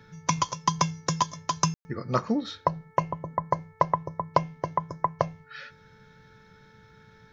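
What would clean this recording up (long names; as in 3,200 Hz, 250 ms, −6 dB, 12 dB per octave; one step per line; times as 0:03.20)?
hum removal 439.9 Hz, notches 5
ambience match 0:01.74–0:01.85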